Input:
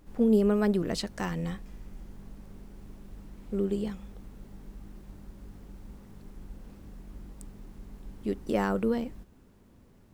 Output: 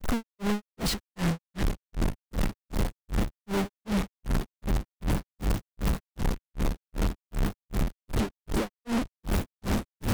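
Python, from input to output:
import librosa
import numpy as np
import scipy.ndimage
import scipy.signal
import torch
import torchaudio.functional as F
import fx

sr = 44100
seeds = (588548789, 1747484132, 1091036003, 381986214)

y = np.sign(x) * np.sqrt(np.mean(np.square(x)))
y = fx.bass_treble(y, sr, bass_db=4, treble_db=-2)
y = fx.granulator(y, sr, seeds[0], grain_ms=236.0, per_s=2.6, spray_ms=100.0, spread_st=0)
y = y * librosa.db_to_amplitude(7.0)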